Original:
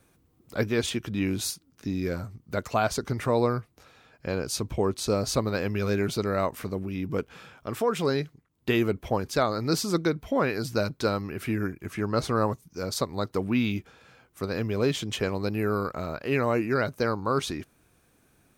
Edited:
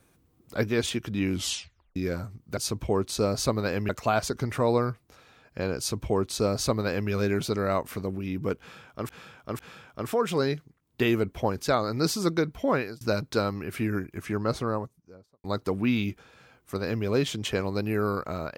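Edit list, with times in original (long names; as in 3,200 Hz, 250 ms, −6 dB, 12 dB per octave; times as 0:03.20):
0:01.32: tape stop 0.64 s
0:04.46–0:05.78: duplicate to 0:02.57
0:07.27–0:07.77: repeat, 3 plays
0:10.43–0:10.69: fade out
0:11.92–0:13.12: fade out and dull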